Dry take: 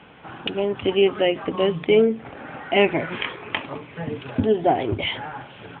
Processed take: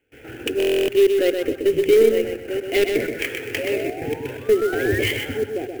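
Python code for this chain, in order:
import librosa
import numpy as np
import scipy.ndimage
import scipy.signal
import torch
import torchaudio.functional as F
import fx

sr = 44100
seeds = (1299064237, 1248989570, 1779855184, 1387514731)

p1 = scipy.signal.sosfilt(scipy.signal.butter(4, 2600.0, 'lowpass', fs=sr, output='sos'), x)
p2 = p1 + 10.0 ** (-11.0 / 20.0) * np.pad(p1, (int(907 * sr / 1000.0), 0))[:len(p1)]
p3 = fx.step_gate(p2, sr, bpm=127, pattern='.xxxxxx.x.x.x', floor_db=-24.0, edge_ms=4.5)
p4 = fx.spec_paint(p3, sr, seeds[0], shape='rise', start_s=3.58, length_s=1.41, low_hz=530.0, high_hz=1900.0, level_db=-30.0)
p5 = fx.level_steps(p4, sr, step_db=10)
p6 = p4 + (p5 * 10.0 ** (1.0 / 20.0))
p7 = 10.0 ** (-12.5 / 20.0) * np.tanh(p6 / 10.0 ** (-12.5 / 20.0))
p8 = fx.band_shelf(p7, sr, hz=830.0, db=-11.5, octaves=1.2)
p9 = fx.fixed_phaser(p8, sr, hz=450.0, stages=4)
p10 = fx.echo_feedback(p9, sr, ms=126, feedback_pct=32, wet_db=-5.5)
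p11 = fx.buffer_glitch(p10, sr, at_s=(0.58,), block=1024, repeats=12)
p12 = fx.clock_jitter(p11, sr, seeds[1], jitter_ms=0.02)
y = p12 * 10.0 ** (3.5 / 20.0)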